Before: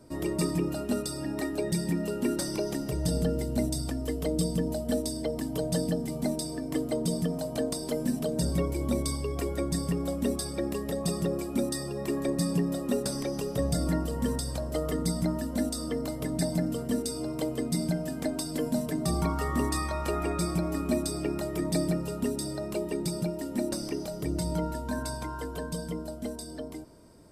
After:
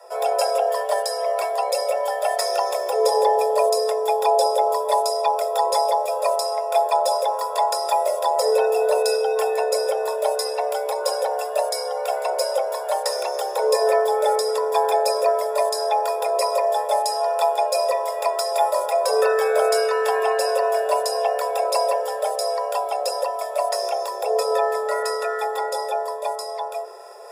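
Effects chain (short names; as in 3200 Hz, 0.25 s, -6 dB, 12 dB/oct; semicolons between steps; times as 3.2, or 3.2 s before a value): ripple EQ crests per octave 1.8, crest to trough 13 dB; reverse; upward compressor, threshold -40 dBFS; reverse; frequency shift +370 Hz; gain +6.5 dB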